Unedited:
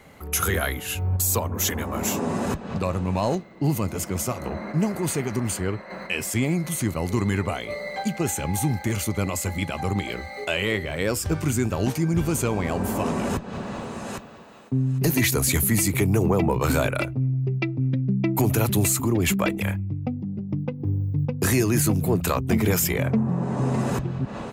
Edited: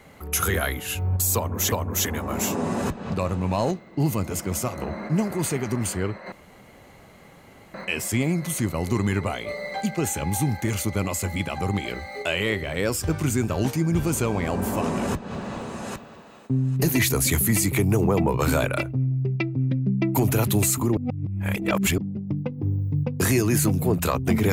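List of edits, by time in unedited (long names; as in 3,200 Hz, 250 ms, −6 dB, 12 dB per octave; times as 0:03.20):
0:01.36–0:01.72: repeat, 2 plays
0:05.96: splice in room tone 1.42 s
0:19.19–0:20.20: reverse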